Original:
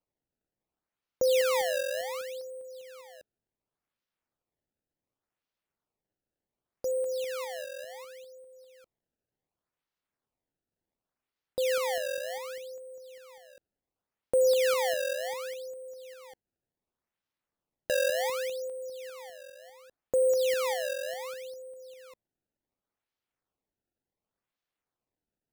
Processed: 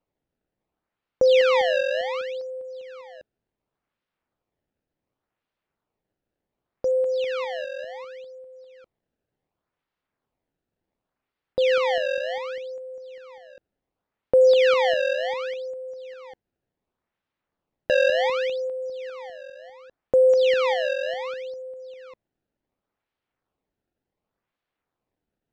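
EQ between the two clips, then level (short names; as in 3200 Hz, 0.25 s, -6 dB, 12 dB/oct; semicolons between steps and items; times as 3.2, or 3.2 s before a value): dynamic EQ 3000 Hz, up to +5 dB, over -48 dBFS, Q 1.6; air absorption 200 m; bell 16000 Hz -7.5 dB 1.1 oct; +8.5 dB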